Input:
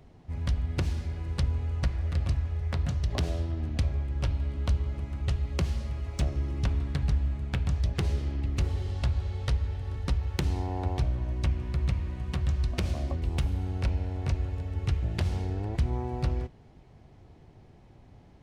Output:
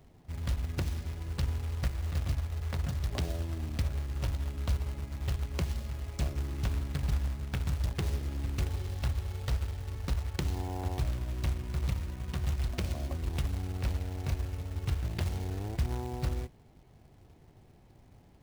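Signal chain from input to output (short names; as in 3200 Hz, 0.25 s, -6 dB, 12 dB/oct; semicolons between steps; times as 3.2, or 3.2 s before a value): short-mantissa float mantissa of 2-bit; gain -4 dB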